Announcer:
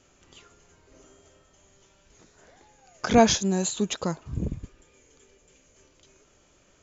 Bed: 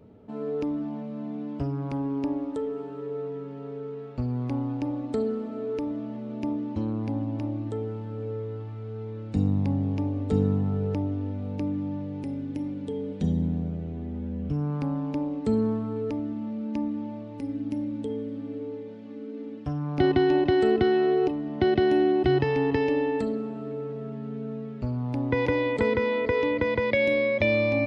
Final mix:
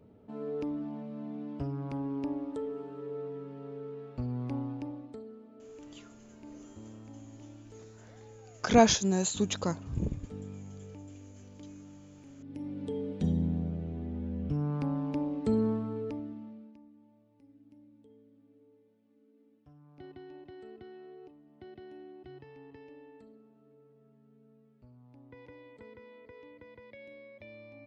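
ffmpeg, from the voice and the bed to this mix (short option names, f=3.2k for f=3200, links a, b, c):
-filter_complex "[0:a]adelay=5600,volume=-3dB[a];[1:a]volume=10dB,afade=t=out:st=4.58:d=0.63:silence=0.211349,afade=t=in:st=12.36:d=0.51:silence=0.158489,afade=t=out:st=15.7:d=1.07:silence=0.0630957[b];[a][b]amix=inputs=2:normalize=0"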